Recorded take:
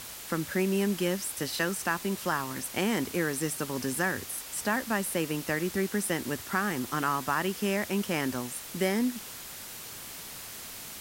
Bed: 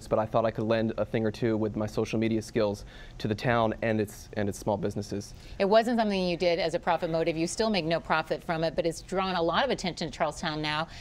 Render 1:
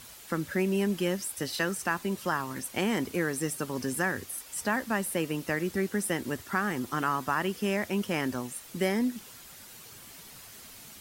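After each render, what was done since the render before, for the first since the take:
broadband denoise 8 dB, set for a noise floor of −43 dBFS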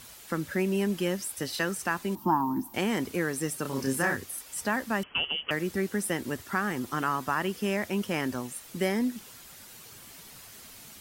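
0:02.15–0:02.74: drawn EQ curve 130 Hz 0 dB, 200 Hz +9 dB, 330 Hz +12 dB, 490 Hz −19 dB, 910 Hz +13 dB, 1,300 Hz −9 dB, 2,100 Hz −19 dB, 5,300 Hz −13 dB, 9,500 Hz −15 dB, 15,000 Hz +5 dB
0:03.62–0:04.16: double-tracking delay 30 ms −2.5 dB
0:05.03–0:05.51: voice inversion scrambler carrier 3,200 Hz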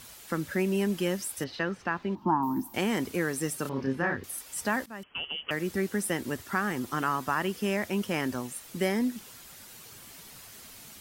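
0:01.44–0:02.43: high-frequency loss of the air 230 metres
0:03.69–0:04.24: high-frequency loss of the air 280 metres
0:04.86–0:05.71: fade in, from −17 dB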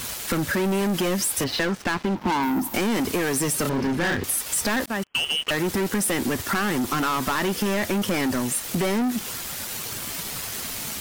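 leveller curve on the samples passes 5
downward compressor, threshold −22 dBFS, peak gain reduction 6.5 dB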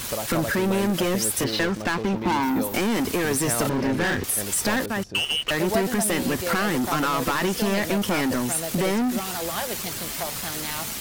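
mix in bed −4.5 dB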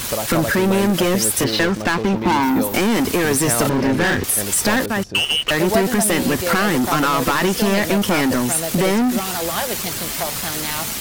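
level +6 dB

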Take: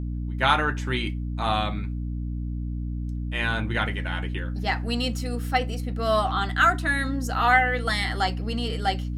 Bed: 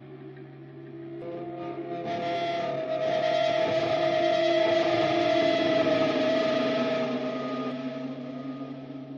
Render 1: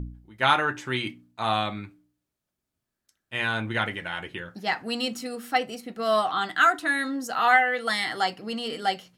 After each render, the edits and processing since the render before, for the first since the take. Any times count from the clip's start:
hum removal 60 Hz, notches 5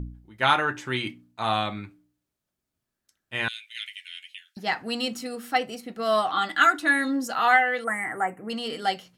0:03.48–0:04.57: Butterworth high-pass 2,400 Hz
0:06.33–0:07.33: comb filter 3.5 ms
0:07.84–0:08.50: elliptic band-stop filter 2,100–7,800 Hz, stop band 50 dB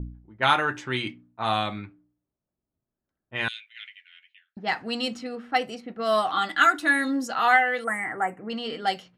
low-pass that shuts in the quiet parts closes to 820 Hz, open at −22.5 dBFS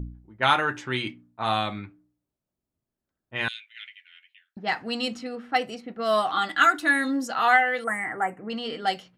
tape wow and flutter 15 cents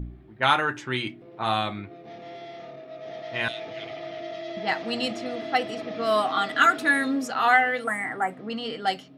mix in bed −11.5 dB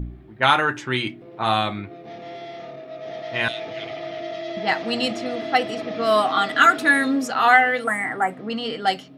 level +4.5 dB
brickwall limiter −3 dBFS, peak gain reduction 1.5 dB

